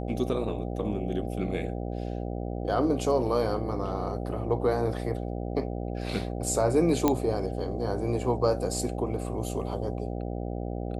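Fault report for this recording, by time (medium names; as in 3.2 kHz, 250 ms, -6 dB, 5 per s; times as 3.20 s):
buzz 60 Hz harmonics 13 -33 dBFS
7.08 s: pop -9 dBFS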